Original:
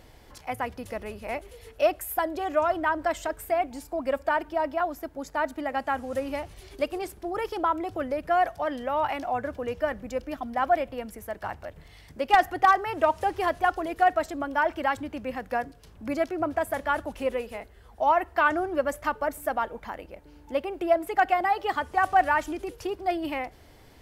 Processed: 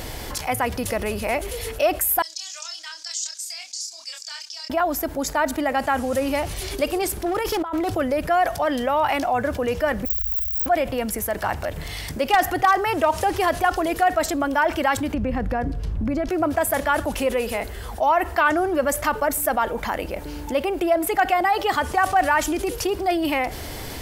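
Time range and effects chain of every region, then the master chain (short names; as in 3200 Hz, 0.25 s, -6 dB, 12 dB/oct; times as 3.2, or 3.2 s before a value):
2.22–4.7 Butterworth band-pass 5600 Hz, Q 2.3 + doubler 28 ms -5 dB
7.26–7.95 negative-ratio compressor -32 dBFS, ratio -0.5 + hard clip -28 dBFS
10.05–10.66 switching spikes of -23 dBFS + inverse Chebyshev band-stop 320–9100 Hz, stop band 70 dB + sample leveller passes 1
15.14–16.29 RIAA curve playback + compressor, threshold -29 dBFS
whole clip: high shelf 4200 Hz +8 dB; fast leveller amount 50%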